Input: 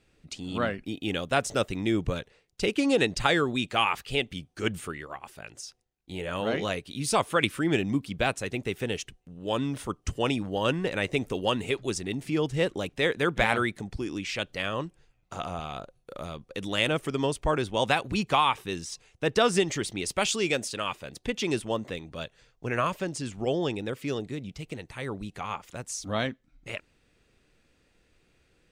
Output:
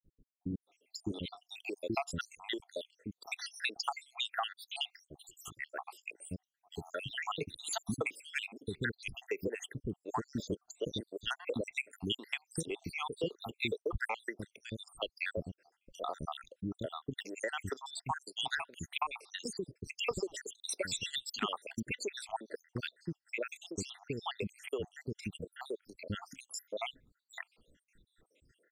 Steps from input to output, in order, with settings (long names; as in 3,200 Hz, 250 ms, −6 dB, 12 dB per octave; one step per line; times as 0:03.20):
time-frequency cells dropped at random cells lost 80%
downward compressor 12 to 1, threshold −34 dBFS, peak gain reduction 15 dB
dynamic equaliser 410 Hz, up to +5 dB, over −53 dBFS, Q 2.2
multiband delay without the direct sound lows, highs 630 ms, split 360 Hz
pitch vibrato 0.84 Hz 26 cents
level +2.5 dB